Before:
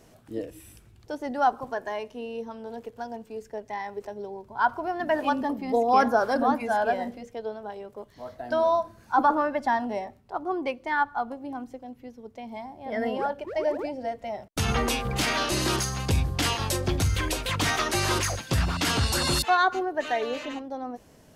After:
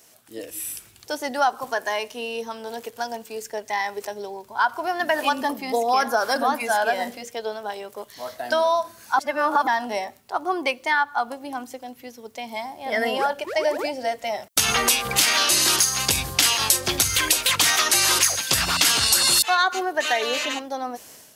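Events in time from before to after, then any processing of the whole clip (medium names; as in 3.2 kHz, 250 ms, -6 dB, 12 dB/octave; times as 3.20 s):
9.19–9.67 s: reverse
whole clip: level rider gain up to 10 dB; tilt EQ +4 dB/octave; compression 3:1, threshold -16 dBFS; trim -1.5 dB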